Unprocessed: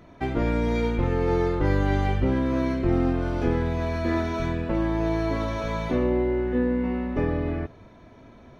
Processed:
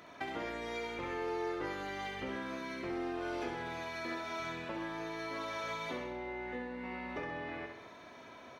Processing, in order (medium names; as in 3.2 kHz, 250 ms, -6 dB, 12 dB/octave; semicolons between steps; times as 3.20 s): high-pass 1.2 kHz 6 dB/octave; compression 5:1, threshold -43 dBFS, peak gain reduction 13 dB; feedback delay 66 ms, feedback 53%, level -5.5 dB; trim +4.5 dB